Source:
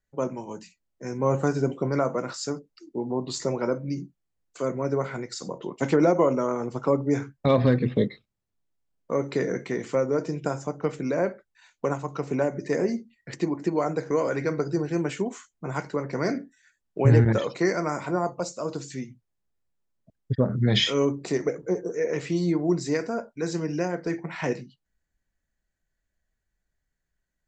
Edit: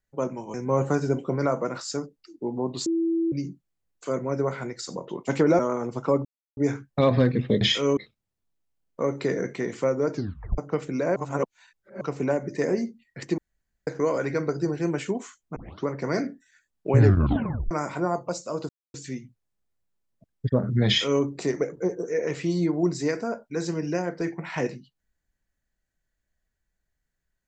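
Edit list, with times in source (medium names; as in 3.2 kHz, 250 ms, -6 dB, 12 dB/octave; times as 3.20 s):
0.54–1.07 s: delete
3.39–3.85 s: bleep 331 Hz -21 dBFS
6.12–6.38 s: delete
7.04 s: insert silence 0.32 s
10.24 s: tape stop 0.45 s
11.27–12.12 s: reverse
13.49–13.98 s: room tone
15.67 s: tape start 0.30 s
17.11 s: tape stop 0.71 s
18.80 s: insert silence 0.25 s
20.73–21.09 s: copy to 8.08 s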